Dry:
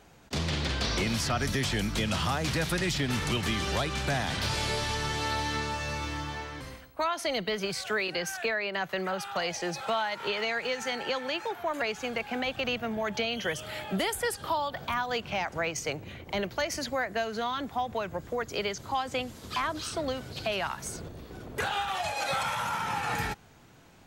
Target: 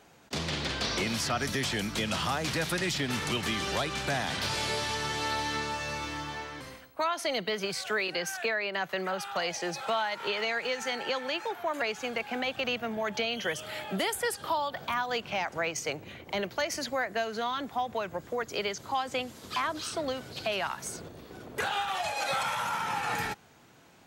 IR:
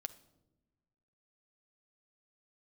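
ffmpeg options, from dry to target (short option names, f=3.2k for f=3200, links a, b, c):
-af "highpass=f=190:p=1"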